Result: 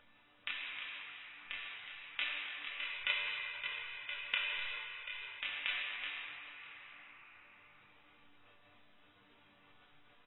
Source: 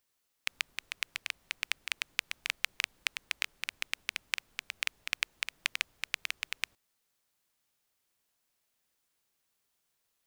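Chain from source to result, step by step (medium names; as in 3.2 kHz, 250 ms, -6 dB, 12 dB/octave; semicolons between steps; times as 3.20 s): resampled via 16 kHz; inverted gate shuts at -26 dBFS, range -32 dB; dynamic bell 3.5 kHz, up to +5 dB, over -56 dBFS, Q 0.81; chord resonator G2 minor, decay 0.47 s; chorus voices 2, 0.82 Hz, delay 28 ms, depth 4.8 ms; 2.77–5.35 s: comb 2 ms, depth 78%; echo from a far wall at 15 m, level -29 dB; reverberation RT60 2.7 s, pre-delay 3 ms, DRR -6 dB; upward compressor, threshold -54 dBFS; distance through air 110 m; transient shaper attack +5 dB, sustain +9 dB; trim +9 dB; AAC 16 kbps 22.05 kHz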